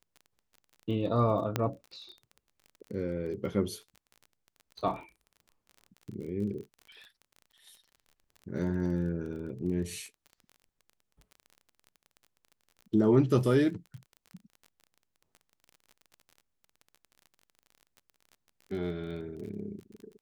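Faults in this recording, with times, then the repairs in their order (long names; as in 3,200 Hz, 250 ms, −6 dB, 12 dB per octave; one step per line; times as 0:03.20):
surface crackle 29 per second −41 dBFS
0:01.56: click −13 dBFS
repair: click removal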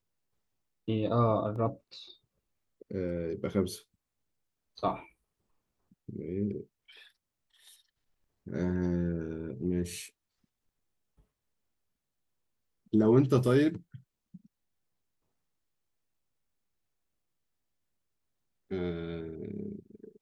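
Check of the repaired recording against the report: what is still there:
0:01.56: click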